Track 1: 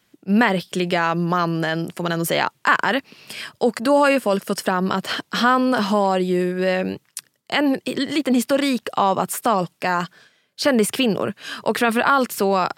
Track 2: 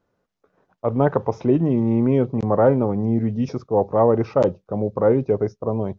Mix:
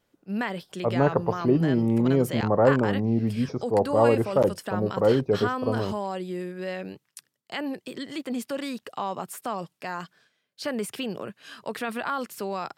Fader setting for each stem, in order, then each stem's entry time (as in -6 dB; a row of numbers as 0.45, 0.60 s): -12.5, -3.5 dB; 0.00, 0.00 s